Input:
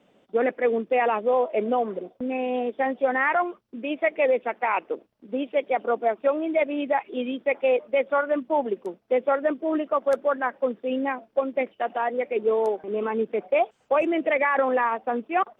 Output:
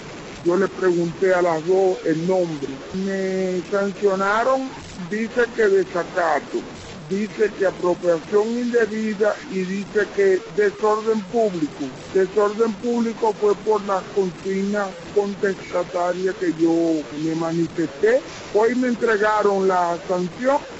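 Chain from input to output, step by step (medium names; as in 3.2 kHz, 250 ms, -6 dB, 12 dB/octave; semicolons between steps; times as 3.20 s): one-bit delta coder 64 kbps, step -34 dBFS; tape speed -25%; trim +4 dB; AAC 24 kbps 22.05 kHz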